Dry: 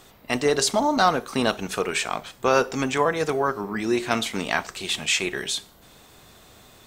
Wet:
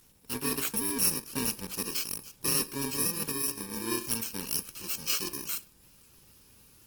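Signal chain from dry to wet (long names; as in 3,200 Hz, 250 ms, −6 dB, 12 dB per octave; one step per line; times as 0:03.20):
samples in bit-reversed order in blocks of 64 samples
level −7 dB
Opus 16 kbit/s 48,000 Hz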